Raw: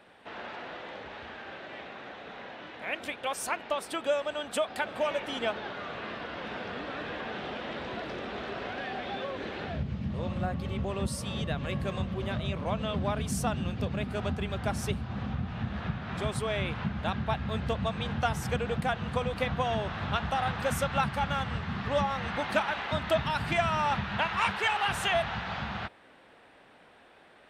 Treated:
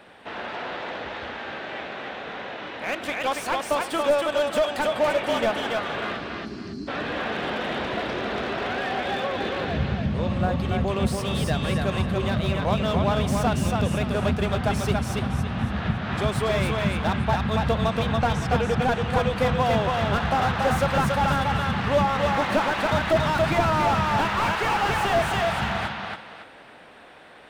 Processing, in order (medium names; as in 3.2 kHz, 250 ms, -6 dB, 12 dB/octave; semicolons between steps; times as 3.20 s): 6.17–6.88 s: spectral selection erased 410–4000 Hz; 18.00–18.84 s: distance through air 76 m; thinning echo 281 ms, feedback 31%, high-pass 240 Hz, level -3.5 dB; slew-rate limiter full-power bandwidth 46 Hz; trim +7.5 dB